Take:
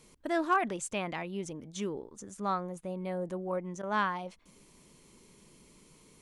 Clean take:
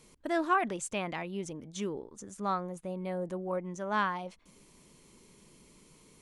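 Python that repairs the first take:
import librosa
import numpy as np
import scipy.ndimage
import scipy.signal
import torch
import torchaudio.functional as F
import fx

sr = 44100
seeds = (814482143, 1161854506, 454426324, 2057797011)

y = fx.fix_declip(x, sr, threshold_db=-18.5)
y = fx.fix_interpolate(y, sr, at_s=(3.82,), length_ms=10.0)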